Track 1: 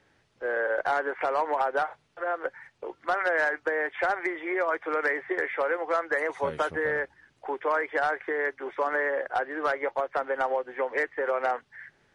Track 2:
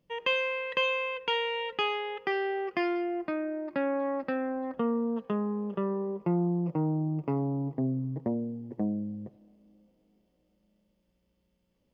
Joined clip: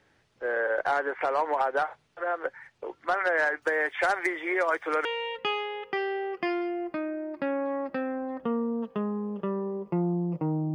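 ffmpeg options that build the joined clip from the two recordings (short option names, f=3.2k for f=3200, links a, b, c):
-filter_complex "[0:a]asettb=1/sr,asplit=3[a][b][c];[a]atrim=end=3.624[d];[b]atrim=start=3.62:end=5.05,asetpts=PTS-STARTPTS,afade=t=in:d=0.004:c=qsin,afade=t=out:st=1.426:d=0.004:c=qsin,aemphasis=mode=production:type=75kf[e];[c]atrim=start=5.046[f];[d][e]acrossfade=d=0.004:c1=hsin:c2=qsin[g];[g][f]acrossfade=d=0.004:c1=qsin:c2=hsin,apad=whole_dur=10.74,atrim=end=10.74,atrim=end=5.052[h];[1:a]atrim=start=1.388:end=7.08[i];[h][i]acrossfade=d=0.004:c1=hsin:c2=hsin"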